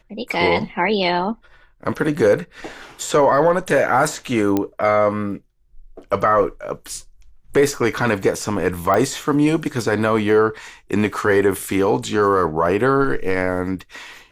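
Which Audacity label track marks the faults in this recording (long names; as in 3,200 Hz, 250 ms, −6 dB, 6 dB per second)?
4.570000	4.570000	click −7 dBFS
8.940000	8.940000	click −8 dBFS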